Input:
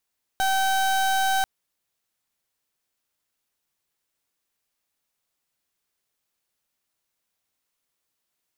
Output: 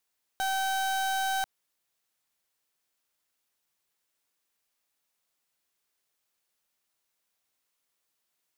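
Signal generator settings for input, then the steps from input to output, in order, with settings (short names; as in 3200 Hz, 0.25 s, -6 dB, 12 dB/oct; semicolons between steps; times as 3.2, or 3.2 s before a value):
pulse 770 Hz, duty 31% -22 dBFS 1.04 s
low shelf 250 Hz -6 dB; limiter -25 dBFS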